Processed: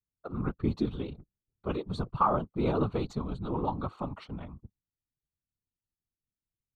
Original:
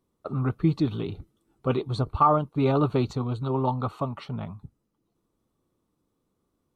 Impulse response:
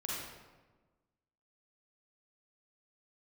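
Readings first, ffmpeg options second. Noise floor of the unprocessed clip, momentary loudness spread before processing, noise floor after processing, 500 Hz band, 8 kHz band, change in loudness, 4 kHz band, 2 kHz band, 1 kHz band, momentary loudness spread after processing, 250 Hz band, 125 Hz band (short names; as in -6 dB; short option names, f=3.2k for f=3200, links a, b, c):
-77 dBFS, 14 LU, under -85 dBFS, -6.0 dB, n/a, -6.0 dB, -6.5 dB, -5.0 dB, -6.0 dB, 15 LU, -5.5 dB, -8.0 dB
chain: -af "anlmdn=0.00631,afftfilt=real='hypot(re,im)*cos(2*PI*random(0))':imag='hypot(re,im)*sin(2*PI*random(1))':win_size=512:overlap=0.75"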